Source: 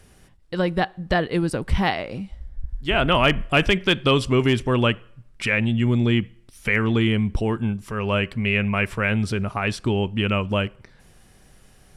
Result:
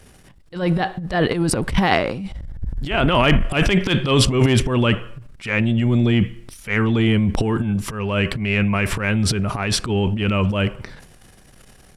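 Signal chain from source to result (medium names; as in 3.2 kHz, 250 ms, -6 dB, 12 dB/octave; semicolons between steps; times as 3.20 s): transient shaper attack -12 dB, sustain +11 dB; trim +3 dB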